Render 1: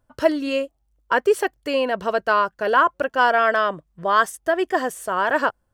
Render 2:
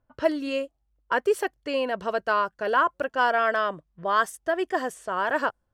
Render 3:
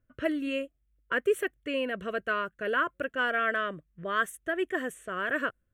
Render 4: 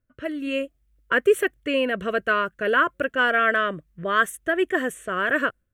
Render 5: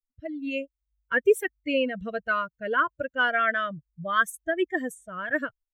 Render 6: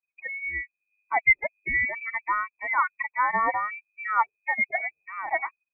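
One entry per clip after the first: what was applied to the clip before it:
low-pass that shuts in the quiet parts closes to 2,900 Hz, open at −18 dBFS; level −5 dB
phaser with its sweep stopped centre 2,100 Hz, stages 4
automatic gain control gain up to 10.5 dB; level −2.5 dB
spectral dynamics exaggerated over time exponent 2
voice inversion scrambler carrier 2,500 Hz

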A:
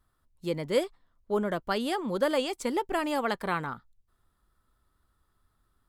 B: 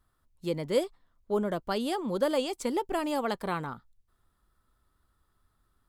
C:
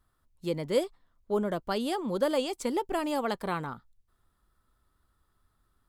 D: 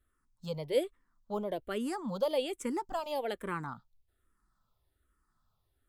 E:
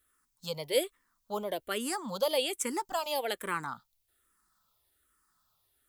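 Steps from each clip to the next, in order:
dynamic equaliser 1,800 Hz, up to −6 dB, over −43 dBFS, Q 1.1
no processing that can be heard
frequency shifter mixed with the dry sound −1.2 Hz; level −2 dB
spectral tilt +3 dB per octave; level +3.5 dB

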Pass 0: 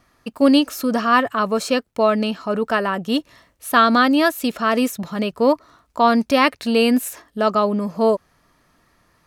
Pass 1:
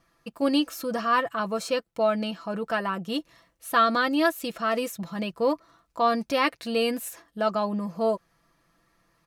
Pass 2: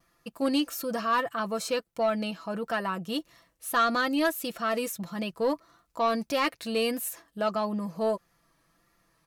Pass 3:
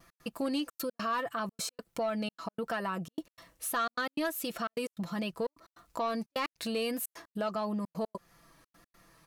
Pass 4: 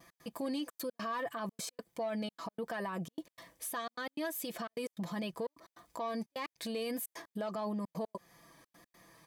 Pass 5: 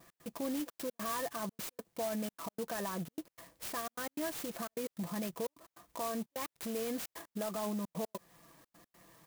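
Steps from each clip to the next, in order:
comb filter 6 ms, depth 57%; level −8.5 dB
high-shelf EQ 7,300 Hz +7 dB; pitch vibrato 1.6 Hz 41 cents; soft clipping −14 dBFS, distortion −21 dB; level −2 dB
in parallel at 0 dB: brickwall limiter −27.5 dBFS, peak gain reduction 11 dB; on the sum: gate pattern "x.xxxxx." 151 BPM −60 dB; downward compressor 2 to 1, threshold −39 dBFS, peak gain reduction 11 dB; level +1 dB
brickwall limiter −32 dBFS, peak gain reduction 11 dB; notch comb filter 1,400 Hz; level +2.5 dB
converter with an unsteady clock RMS 0.082 ms

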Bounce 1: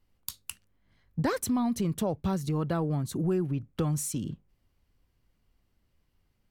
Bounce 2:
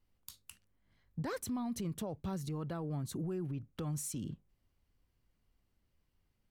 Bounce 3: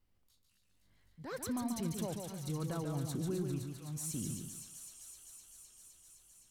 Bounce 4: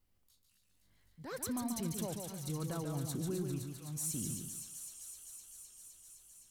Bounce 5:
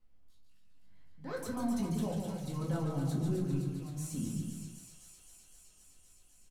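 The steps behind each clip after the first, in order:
brickwall limiter −26 dBFS, peak gain reduction 8.5 dB; level −5.5 dB
volume swells 238 ms; delay with a high-pass on its return 257 ms, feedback 81%, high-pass 2,200 Hz, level −6 dB; feedback echo with a swinging delay time 142 ms, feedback 32%, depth 100 cents, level −5 dB
high-shelf EQ 6,300 Hz +6.5 dB; level −1 dB
low-pass filter 2,700 Hz 6 dB per octave; slap from a distant wall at 44 metres, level −9 dB; rectangular room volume 200 cubic metres, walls furnished, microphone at 2 metres; level −1 dB

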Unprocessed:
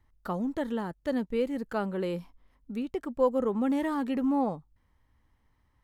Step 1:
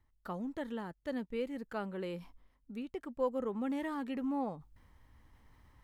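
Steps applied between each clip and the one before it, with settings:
dynamic equaliser 2,300 Hz, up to +4 dB, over −51 dBFS, Q 1
reversed playback
upward compression, threshold −38 dBFS
reversed playback
level −8.5 dB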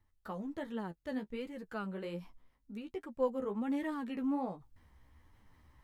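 flanger 1.3 Hz, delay 8.8 ms, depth 7.2 ms, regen +21%
level +2.5 dB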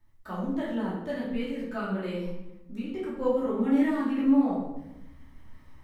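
rectangular room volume 330 cubic metres, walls mixed, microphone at 2.7 metres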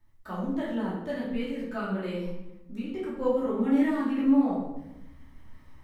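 no processing that can be heard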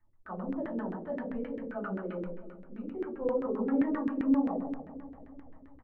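repeating echo 336 ms, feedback 52%, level −15 dB
auto-filter low-pass saw down 7.6 Hz 320–1,900 Hz
level −7 dB

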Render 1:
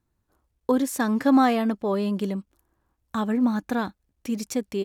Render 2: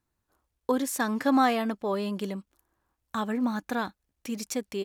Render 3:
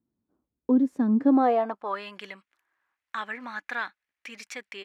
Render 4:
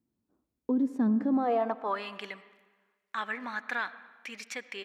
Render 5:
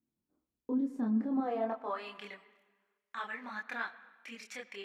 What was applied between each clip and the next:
low-shelf EQ 470 Hz −7.5 dB
band-pass filter sweep 240 Hz → 2,000 Hz, 0:01.15–0:02.06; level +9 dB
brickwall limiter −20.5 dBFS, peak gain reduction 10 dB; convolution reverb RT60 1.3 s, pre-delay 40 ms, DRR 15 dB
multi-voice chorus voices 6, 0.45 Hz, delay 26 ms, depth 4 ms; level −3 dB

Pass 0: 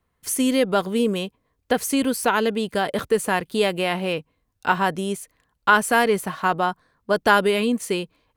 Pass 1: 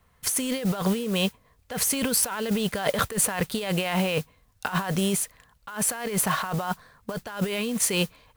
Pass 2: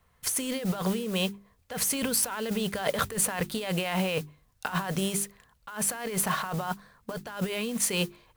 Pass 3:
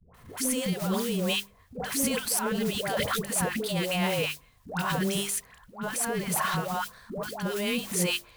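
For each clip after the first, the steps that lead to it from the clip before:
parametric band 320 Hz −11 dB 0.64 octaves; compressor whose output falls as the input rises −31 dBFS, ratio −1; noise that follows the level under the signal 17 dB; level +3.5 dB
mains-hum notches 50/100/150/200/250/300/350/400 Hz; level −3 dB
all-pass dispersion highs, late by 145 ms, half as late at 630 Hz; transient designer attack −8 dB, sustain −1 dB; multiband upward and downward compressor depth 40%; level +2.5 dB

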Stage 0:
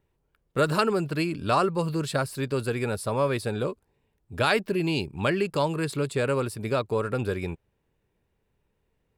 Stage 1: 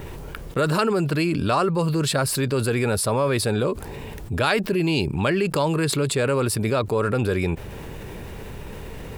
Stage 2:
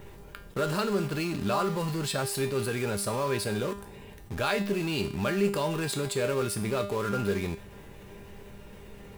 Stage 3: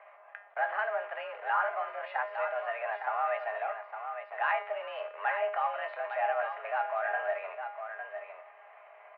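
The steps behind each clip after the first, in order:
envelope flattener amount 70%
in parallel at −6.5 dB: bit reduction 4 bits; on the sum: tuned comb filter 200 Hz, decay 0.49 s, harmonics all, mix 80%
single-tap delay 858 ms −8 dB; single-sideband voice off tune +220 Hz 430–2,100 Hz

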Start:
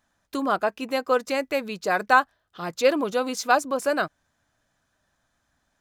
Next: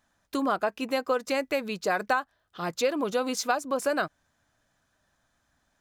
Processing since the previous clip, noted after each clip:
downward compressor 6 to 1, threshold −22 dBFS, peak gain reduction 11 dB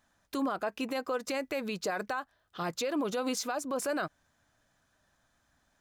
brickwall limiter −24 dBFS, peak gain reduction 11.5 dB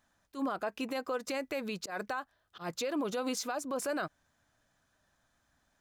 volume swells 104 ms
level −2 dB

